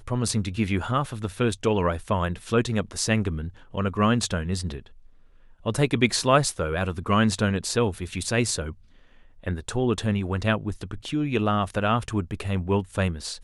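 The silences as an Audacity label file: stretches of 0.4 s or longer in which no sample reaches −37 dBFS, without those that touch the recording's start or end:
4.860000	5.650000	silence
8.730000	9.440000	silence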